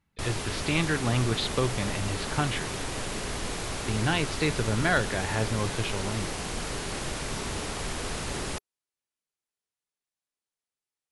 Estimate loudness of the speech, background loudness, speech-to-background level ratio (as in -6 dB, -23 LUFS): -29.5 LUFS, -33.0 LUFS, 3.5 dB